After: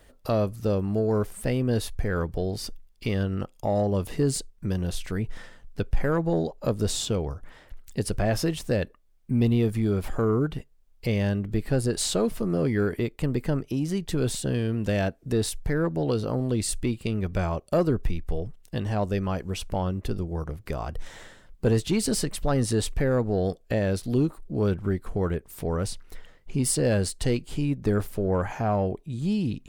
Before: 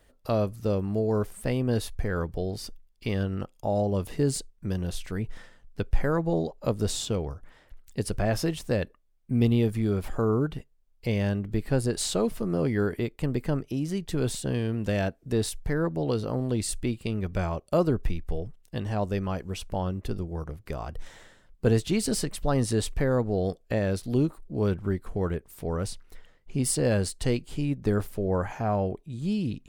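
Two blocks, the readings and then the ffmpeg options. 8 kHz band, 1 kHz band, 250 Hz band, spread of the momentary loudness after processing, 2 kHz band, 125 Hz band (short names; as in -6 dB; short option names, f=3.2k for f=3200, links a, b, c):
+2.0 dB, +1.0 dB, +1.5 dB, 8 LU, +1.5 dB, +1.5 dB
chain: -filter_complex "[0:a]asplit=2[a][b];[b]acompressor=threshold=-39dB:ratio=6,volume=-2dB[c];[a][c]amix=inputs=2:normalize=0,asoftclip=type=tanh:threshold=-13dB,volume=1dB"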